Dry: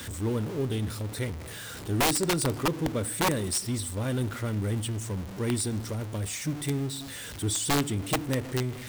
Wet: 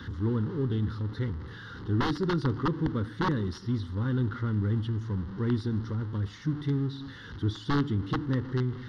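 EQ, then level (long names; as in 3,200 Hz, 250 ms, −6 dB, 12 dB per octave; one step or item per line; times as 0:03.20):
head-to-tape spacing loss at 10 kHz 31 dB
low-shelf EQ 130 Hz −3 dB
phaser with its sweep stopped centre 2,400 Hz, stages 6
+4.5 dB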